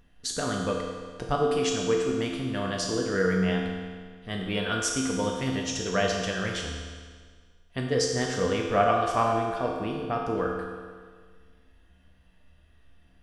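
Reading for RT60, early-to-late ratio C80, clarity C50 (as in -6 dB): 1.7 s, 3.5 dB, 2.0 dB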